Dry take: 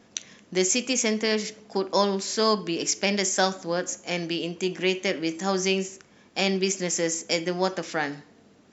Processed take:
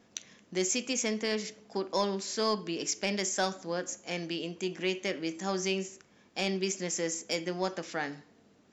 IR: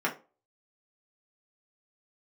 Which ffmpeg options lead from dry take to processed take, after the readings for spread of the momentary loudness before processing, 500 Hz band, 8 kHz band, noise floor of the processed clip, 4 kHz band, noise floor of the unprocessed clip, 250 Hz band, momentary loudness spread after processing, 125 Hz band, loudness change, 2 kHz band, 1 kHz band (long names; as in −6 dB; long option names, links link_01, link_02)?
8 LU, −7.0 dB, can't be measured, −63 dBFS, −7.0 dB, −57 dBFS, −7.0 dB, 8 LU, −7.0 dB, −7.0 dB, −7.0 dB, −7.0 dB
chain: -af "asoftclip=type=tanh:threshold=-8dB,volume=-6.5dB"